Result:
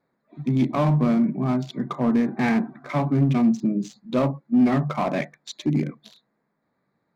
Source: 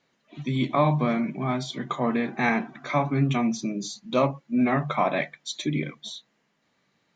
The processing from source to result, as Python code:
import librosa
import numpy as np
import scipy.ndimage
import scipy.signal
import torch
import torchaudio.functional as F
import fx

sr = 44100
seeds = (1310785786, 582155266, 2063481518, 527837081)

p1 = fx.wiener(x, sr, points=15)
p2 = 10.0 ** (-21.5 / 20.0) * (np.abs((p1 / 10.0 ** (-21.5 / 20.0) + 3.0) % 4.0 - 2.0) - 1.0)
p3 = p1 + (p2 * librosa.db_to_amplitude(-6.5))
p4 = fx.dynamic_eq(p3, sr, hz=210.0, q=0.79, threshold_db=-36.0, ratio=4.0, max_db=8)
y = p4 * librosa.db_to_amplitude(-4.0)